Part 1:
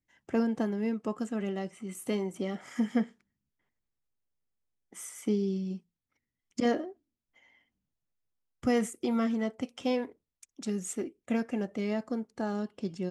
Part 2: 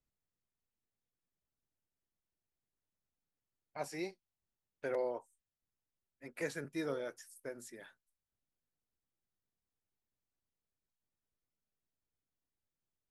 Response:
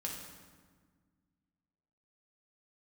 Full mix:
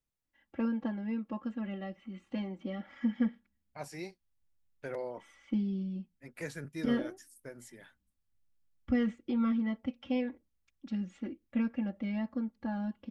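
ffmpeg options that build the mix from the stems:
-filter_complex "[0:a]lowpass=frequency=3800:width=0.5412,lowpass=frequency=3800:width=1.3066,aecho=1:1:3.6:0.93,adelay=250,volume=-7.5dB[link_01];[1:a]volume=-1dB[link_02];[link_01][link_02]amix=inputs=2:normalize=0,asubboost=boost=3:cutoff=200"

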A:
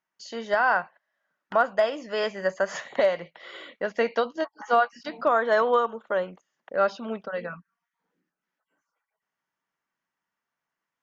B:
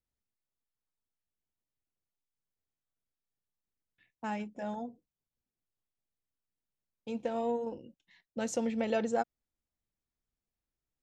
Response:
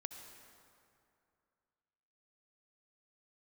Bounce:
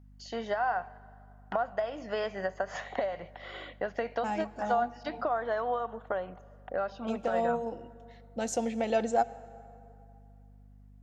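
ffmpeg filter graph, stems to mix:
-filter_complex "[0:a]highshelf=frequency=5500:gain=-8.5,acompressor=threshold=-29dB:ratio=12,volume=-2.5dB,asplit=2[link_01][link_02];[link_02]volume=-10.5dB[link_03];[1:a]bass=frequency=250:gain=-2,treble=frequency=4000:gain=3,aeval=exprs='val(0)+0.002*(sin(2*PI*50*n/s)+sin(2*PI*2*50*n/s)/2+sin(2*PI*3*50*n/s)/3+sin(2*PI*4*50*n/s)/4+sin(2*PI*5*50*n/s)/5)':channel_layout=same,volume=-1.5dB,asplit=2[link_04][link_05];[link_05]volume=-6.5dB[link_06];[2:a]atrim=start_sample=2205[link_07];[link_03][link_06]amix=inputs=2:normalize=0[link_08];[link_08][link_07]afir=irnorm=-1:irlink=0[link_09];[link_01][link_04][link_09]amix=inputs=3:normalize=0,equalizer=frequency=740:width=6.6:gain=11.5"

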